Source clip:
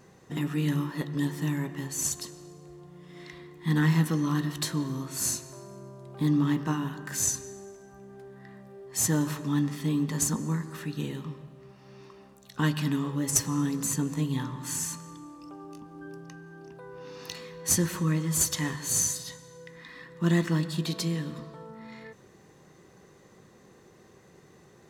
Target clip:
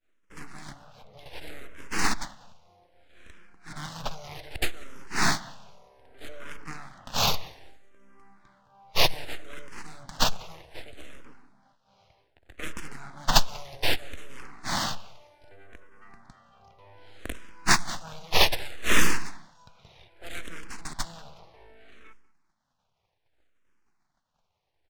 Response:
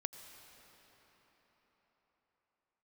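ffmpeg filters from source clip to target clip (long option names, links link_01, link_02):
-filter_complex "[0:a]agate=range=-33dB:threshold=-46dB:ratio=3:detection=peak,bass=frequency=250:gain=-14,treble=frequency=4000:gain=12,acrossover=split=430|2900[link_01][link_02][link_03];[link_01]alimiter=level_in=12.5dB:limit=-24dB:level=0:latency=1,volume=-12.5dB[link_04];[link_04][link_02][link_03]amix=inputs=3:normalize=0,asettb=1/sr,asplit=3[link_05][link_06][link_07];[link_05]atrim=end=0.724[link_08];[link_06]atrim=start=0.72:end=1.26,asetpts=PTS-STARTPTS,afade=type=in:duration=0.004:curve=qsin,afade=type=out:start_time=0.536:duration=0.004:curve=qsin,acrossover=split=400|3700[link_09][link_10][link_11];[link_09]acompressor=threshold=-45dB:ratio=4[link_12];[link_10]acompressor=threshold=-48dB:ratio=4[link_13];[link_11]acompressor=threshold=-49dB:ratio=4[link_14];[link_12][link_13][link_14]amix=inputs=3:normalize=0[link_15];[link_07]atrim=start=1.256[link_16];[link_08][link_15]acrossfade=duration=0.004:curve1=hsin:curve2=qsin[link_17];[link_17][link_16]acrossfade=duration=0.004:curve1=qsin:curve2=hsin,aexciter=amount=2.8:drive=6:freq=10000,aeval=exprs='abs(val(0))':channel_layout=same,adynamicsmooth=sensitivity=6.5:basefreq=3200,asplit=2[link_18][link_19];[link_19]adelay=190,lowpass=frequency=2900:poles=1,volume=-21dB,asplit=2[link_20][link_21];[link_21]adelay=190,lowpass=frequency=2900:poles=1,volume=0.32[link_22];[link_20][link_22]amix=inputs=2:normalize=0[link_23];[link_18][link_23]amix=inputs=2:normalize=0,asplit=2[link_24][link_25];[link_25]afreqshift=-0.64[link_26];[link_24][link_26]amix=inputs=2:normalize=1,volume=1.5dB"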